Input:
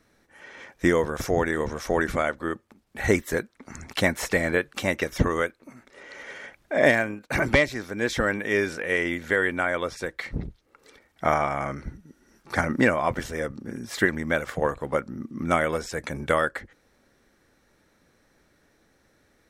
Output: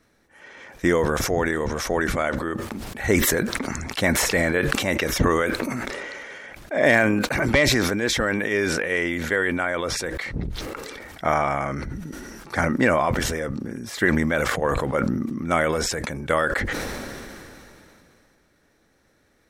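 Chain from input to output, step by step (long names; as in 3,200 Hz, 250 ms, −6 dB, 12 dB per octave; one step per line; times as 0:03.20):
level that may fall only so fast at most 21 dB per second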